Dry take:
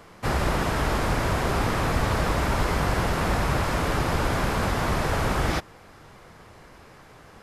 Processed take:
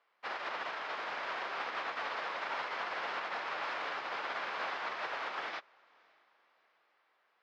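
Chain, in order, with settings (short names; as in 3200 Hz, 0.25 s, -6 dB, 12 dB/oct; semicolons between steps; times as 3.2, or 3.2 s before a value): octaver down 2 oct, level +1 dB; tilt +3.5 dB/oct; limiter -17.5 dBFS, peak gain reduction 4.5 dB; BPF 560–4500 Hz; air absorption 230 m; diffused feedback echo 0.554 s, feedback 47%, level -12 dB; upward expander 2.5:1, over -42 dBFS; gain -5 dB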